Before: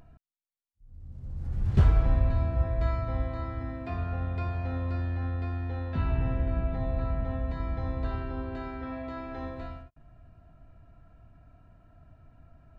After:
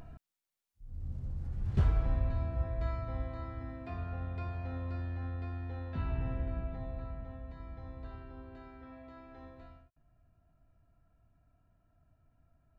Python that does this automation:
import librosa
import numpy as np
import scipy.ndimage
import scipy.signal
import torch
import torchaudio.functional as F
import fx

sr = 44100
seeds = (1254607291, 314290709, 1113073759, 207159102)

y = fx.gain(x, sr, db=fx.line((1.09, 5.0), (1.55, -7.0), (6.42, -7.0), (7.37, -14.0)))